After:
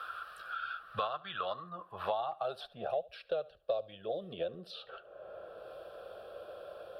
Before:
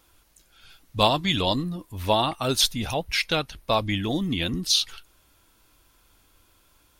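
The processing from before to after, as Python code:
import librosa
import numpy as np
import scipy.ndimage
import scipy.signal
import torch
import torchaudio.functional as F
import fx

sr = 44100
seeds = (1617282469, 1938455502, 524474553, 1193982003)

p1 = fx.fixed_phaser(x, sr, hz=1400.0, stages=8)
p2 = fx.filter_sweep_bandpass(p1, sr, from_hz=1300.0, to_hz=560.0, start_s=1.35, end_s=3.13, q=4.2)
p3 = p2 + fx.echo_feedback(p2, sr, ms=73, feedback_pct=23, wet_db=-22.0, dry=0)
p4 = fx.band_squash(p3, sr, depth_pct=100)
y = p4 * 10.0 ** (1.5 / 20.0)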